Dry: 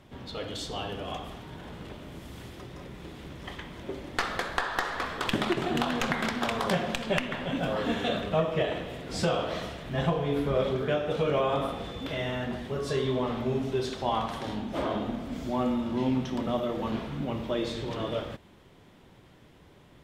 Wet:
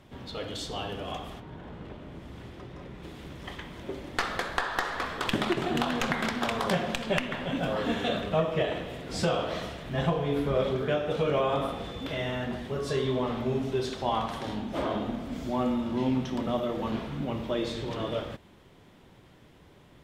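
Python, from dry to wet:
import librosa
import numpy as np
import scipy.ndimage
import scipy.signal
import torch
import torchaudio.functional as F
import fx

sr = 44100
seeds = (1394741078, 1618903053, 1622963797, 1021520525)

y = fx.lowpass(x, sr, hz=fx.line((1.39, 1400.0), (3.02, 3200.0)), slope=6, at=(1.39, 3.02), fade=0.02)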